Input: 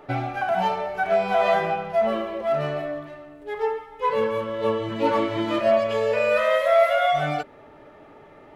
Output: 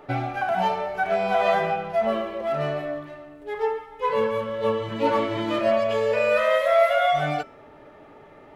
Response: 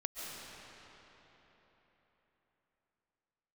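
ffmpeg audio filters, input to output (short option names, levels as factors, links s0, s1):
-af "bandreject=f=332.4:t=h:w=4,bandreject=f=664.8:t=h:w=4,bandreject=f=997.2:t=h:w=4,bandreject=f=1329.6:t=h:w=4,bandreject=f=1662:t=h:w=4,bandreject=f=1994.4:t=h:w=4,bandreject=f=2326.8:t=h:w=4,bandreject=f=2659.2:t=h:w=4,bandreject=f=2991.6:t=h:w=4,bandreject=f=3324:t=h:w=4,bandreject=f=3656.4:t=h:w=4,bandreject=f=3988.8:t=h:w=4,bandreject=f=4321.2:t=h:w=4,bandreject=f=4653.6:t=h:w=4,bandreject=f=4986:t=h:w=4,bandreject=f=5318.4:t=h:w=4,bandreject=f=5650.8:t=h:w=4,bandreject=f=5983.2:t=h:w=4,bandreject=f=6315.6:t=h:w=4,bandreject=f=6648:t=h:w=4,bandreject=f=6980.4:t=h:w=4,bandreject=f=7312.8:t=h:w=4,bandreject=f=7645.2:t=h:w=4,bandreject=f=7977.6:t=h:w=4,bandreject=f=8310:t=h:w=4,bandreject=f=8642.4:t=h:w=4,bandreject=f=8974.8:t=h:w=4,bandreject=f=9307.2:t=h:w=4,bandreject=f=9639.6:t=h:w=4,bandreject=f=9972:t=h:w=4,bandreject=f=10304.4:t=h:w=4,bandreject=f=10636.8:t=h:w=4,bandreject=f=10969.2:t=h:w=4,bandreject=f=11301.6:t=h:w=4,bandreject=f=11634:t=h:w=4,bandreject=f=11966.4:t=h:w=4,bandreject=f=12298.8:t=h:w=4,bandreject=f=12631.2:t=h:w=4,bandreject=f=12963.6:t=h:w=4"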